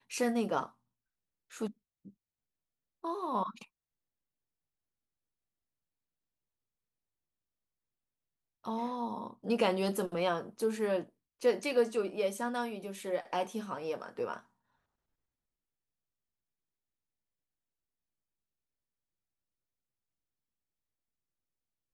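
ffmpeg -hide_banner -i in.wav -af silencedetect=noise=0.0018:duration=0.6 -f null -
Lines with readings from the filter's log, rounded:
silence_start: 0.72
silence_end: 1.50 | silence_duration: 0.79
silence_start: 2.10
silence_end: 3.04 | silence_duration: 0.93
silence_start: 3.65
silence_end: 8.64 | silence_duration: 4.99
silence_start: 14.41
silence_end: 21.93 | silence_duration: 7.52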